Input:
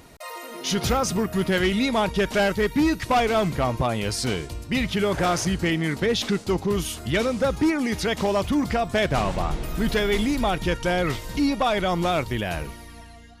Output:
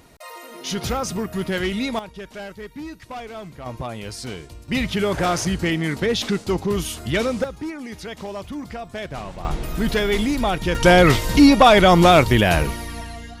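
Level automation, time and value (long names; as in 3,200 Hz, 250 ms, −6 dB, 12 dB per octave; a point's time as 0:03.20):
−2 dB
from 0:01.99 −13.5 dB
from 0:03.66 −6.5 dB
from 0:04.68 +1.5 dB
from 0:07.44 −9 dB
from 0:09.45 +2 dB
from 0:10.75 +11 dB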